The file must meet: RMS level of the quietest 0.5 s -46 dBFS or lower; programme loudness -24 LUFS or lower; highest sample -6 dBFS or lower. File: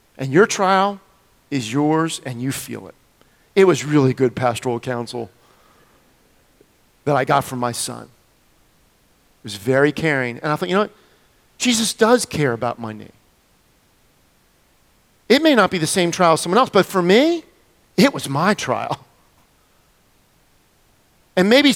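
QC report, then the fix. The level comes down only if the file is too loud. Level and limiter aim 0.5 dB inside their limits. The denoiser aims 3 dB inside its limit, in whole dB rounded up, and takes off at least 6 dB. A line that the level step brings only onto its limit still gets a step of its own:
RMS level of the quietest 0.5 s -58 dBFS: pass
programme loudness -18.0 LUFS: fail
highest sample -2.0 dBFS: fail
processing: trim -6.5 dB

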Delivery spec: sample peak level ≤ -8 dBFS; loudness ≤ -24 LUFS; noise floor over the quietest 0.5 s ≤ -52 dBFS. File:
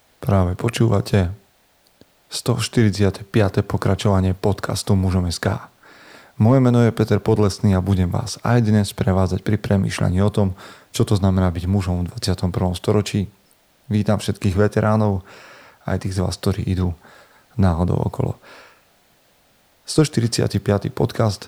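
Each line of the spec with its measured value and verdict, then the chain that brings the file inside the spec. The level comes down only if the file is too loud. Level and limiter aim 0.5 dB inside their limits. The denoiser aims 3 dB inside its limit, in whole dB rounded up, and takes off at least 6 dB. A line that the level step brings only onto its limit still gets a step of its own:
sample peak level -4.5 dBFS: fail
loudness -20.0 LUFS: fail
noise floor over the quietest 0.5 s -58 dBFS: pass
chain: trim -4.5 dB

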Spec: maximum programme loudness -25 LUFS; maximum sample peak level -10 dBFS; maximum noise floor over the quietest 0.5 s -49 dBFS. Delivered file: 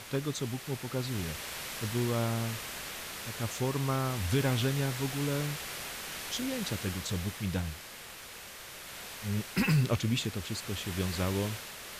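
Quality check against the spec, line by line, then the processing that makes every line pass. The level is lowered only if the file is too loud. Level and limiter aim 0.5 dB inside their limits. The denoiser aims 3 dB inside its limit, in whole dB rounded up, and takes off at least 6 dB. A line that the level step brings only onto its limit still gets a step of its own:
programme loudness -33.0 LUFS: pass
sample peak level -17.5 dBFS: pass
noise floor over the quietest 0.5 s -47 dBFS: fail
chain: noise reduction 6 dB, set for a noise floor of -47 dBFS

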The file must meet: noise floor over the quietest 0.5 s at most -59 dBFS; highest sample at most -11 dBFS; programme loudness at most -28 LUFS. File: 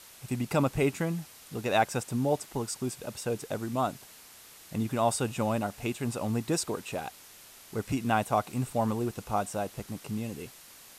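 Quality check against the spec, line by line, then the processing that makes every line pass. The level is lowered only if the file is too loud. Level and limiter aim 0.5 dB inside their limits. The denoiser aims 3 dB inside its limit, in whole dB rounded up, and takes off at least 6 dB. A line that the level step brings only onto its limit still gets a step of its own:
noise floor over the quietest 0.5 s -52 dBFS: fail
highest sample -13.0 dBFS: pass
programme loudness -31.5 LUFS: pass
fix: noise reduction 10 dB, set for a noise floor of -52 dBFS

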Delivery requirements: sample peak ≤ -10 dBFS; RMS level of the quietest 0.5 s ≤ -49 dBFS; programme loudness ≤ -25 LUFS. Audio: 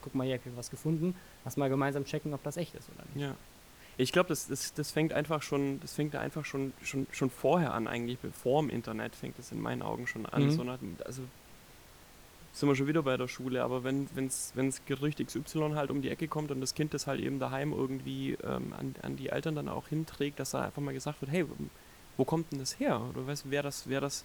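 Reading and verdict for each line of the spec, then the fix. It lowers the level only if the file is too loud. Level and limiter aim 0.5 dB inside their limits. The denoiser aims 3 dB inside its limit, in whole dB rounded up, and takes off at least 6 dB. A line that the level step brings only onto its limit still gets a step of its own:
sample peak -13.5 dBFS: pass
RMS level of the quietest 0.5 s -56 dBFS: pass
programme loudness -34.5 LUFS: pass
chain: none needed

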